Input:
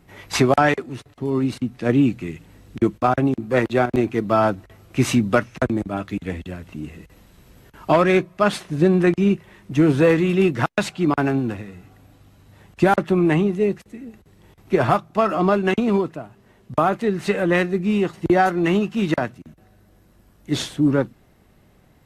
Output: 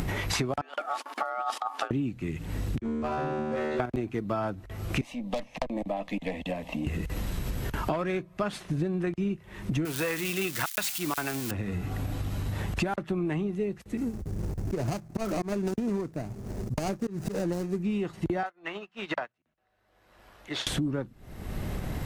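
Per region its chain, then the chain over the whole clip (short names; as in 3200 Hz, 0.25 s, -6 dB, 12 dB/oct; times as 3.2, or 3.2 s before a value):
0.61–1.91 negative-ratio compressor -25 dBFS, ratio -0.5 + ring modulator 1000 Hz + brick-wall FIR high-pass 220 Hz
2.79–3.8 LPF 8400 Hz 24 dB/oct + resonator 76 Hz, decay 1.5 s, mix 100% + overloaded stage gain 31.5 dB
5.01–6.87 three-band isolator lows -15 dB, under 370 Hz, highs -13 dB, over 3000 Hz + tube stage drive 21 dB, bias 0.45 + fixed phaser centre 380 Hz, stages 6
9.85–11.51 switching spikes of -20.5 dBFS + tilt shelf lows -8.5 dB, about 680 Hz
13.97–17.83 median filter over 41 samples + resonant high shelf 4600 Hz +8 dB, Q 1.5 + auto swell 0.208 s
18.43–20.67 three-band isolator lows -21 dB, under 510 Hz, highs -13 dB, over 4600 Hz + notches 60/120/180 Hz + upward expander 2.5:1, over -43 dBFS
whole clip: upward compressor, threshold -22 dBFS; low shelf 100 Hz +9 dB; compressor 8:1, threshold -29 dBFS; gain +2 dB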